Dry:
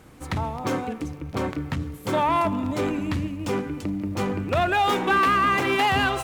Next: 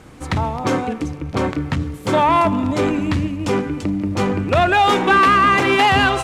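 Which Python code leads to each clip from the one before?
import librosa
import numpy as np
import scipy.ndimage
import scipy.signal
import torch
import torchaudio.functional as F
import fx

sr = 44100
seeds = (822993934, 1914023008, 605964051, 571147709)

y = scipy.signal.sosfilt(scipy.signal.butter(2, 9500.0, 'lowpass', fs=sr, output='sos'), x)
y = F.gain(torch.from_numpy(y), 7.0).numpy()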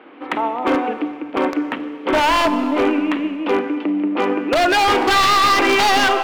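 y = scipy.signal.sosfilt(scipy.signal.ellip(3, 1.0, 40, [280.0, 3000.0], 'bandpass', fs=sr, output='sos'), x)
y = 10.0 ** (-13.0 / 20.0) * (np.abs((y / 10.0 ** (-13.0 / 20.0) + 3.0) % 4.0 - 2.0) - 1.0)
y = fx.rev_schroeder(y, sr, rt60_s=2.0, comb_ms=30, drr_db=13.0)
y = F.gain(torch.from_numpy(y), 3.0).numpy()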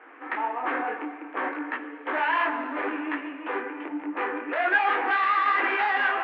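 y = 10.0 ** (-17.0 / 20.0) * np.tanh(x / 10.0 ** (-17.0 / 20.0))
y = fx.cabinet(y, sr, low_hz=350.0, low_slope=24, high_hz=2400.0, hz=(390.0, 570.0, 1700.0), db=(-6, -7, 8))
y = fx.detune_double(y, sr, cents=43)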